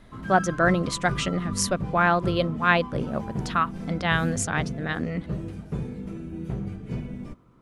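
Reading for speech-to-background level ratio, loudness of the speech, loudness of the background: 8.0 dB, -25.5 LUFS, -33.5 LUFS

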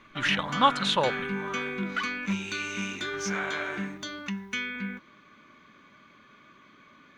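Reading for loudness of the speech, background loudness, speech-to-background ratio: -26.0 LUFS, -32.0 LUFS, 6.0 dB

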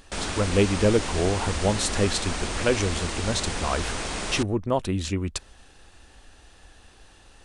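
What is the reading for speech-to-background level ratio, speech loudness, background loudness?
3.5 dB, -26.5 LUFS, -30.0 LUFS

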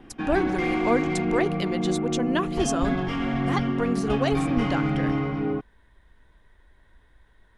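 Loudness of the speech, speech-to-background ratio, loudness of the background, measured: -28.5 LUFS, -2.0 dB, -26.5 LUFS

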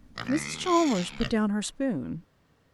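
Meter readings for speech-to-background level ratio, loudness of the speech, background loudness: 8.0 dB, -28.0 LUFS, -36.0 LUFS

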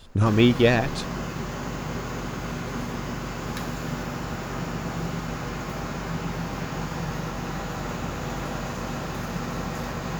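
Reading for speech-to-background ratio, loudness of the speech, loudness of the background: 11.5 dB, -20.0 LUFS, -31.5 LUFS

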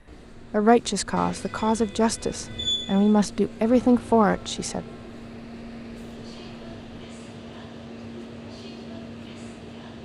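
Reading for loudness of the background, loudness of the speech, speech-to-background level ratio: -36.5 LUFS, -23.0 LUFS, 13.5 dB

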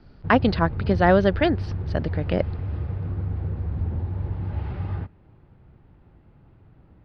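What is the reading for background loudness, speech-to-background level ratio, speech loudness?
-30.0 LUFS, 7.5 dB, -22.5 LUFS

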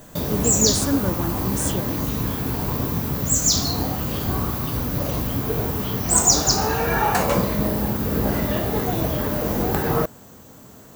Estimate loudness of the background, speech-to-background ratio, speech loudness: -21.5 LUFS, -4.5 dB, -26.0 LUFS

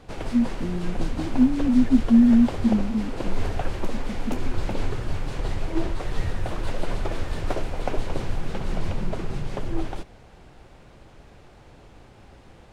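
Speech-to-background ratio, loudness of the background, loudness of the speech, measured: 10.5 dB, -32.0 LUFS, -21.5 LUFS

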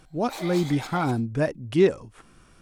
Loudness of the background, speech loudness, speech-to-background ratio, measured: -38.0 LUFS, -25.0 LUFS, 13.0 dB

